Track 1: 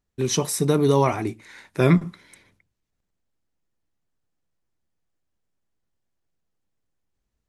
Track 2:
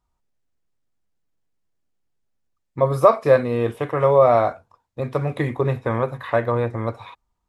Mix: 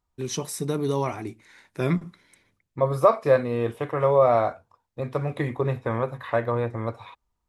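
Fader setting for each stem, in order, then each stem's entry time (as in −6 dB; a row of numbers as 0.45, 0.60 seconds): −7.0, −4.0 decibels; 0.00, 0.00 seconds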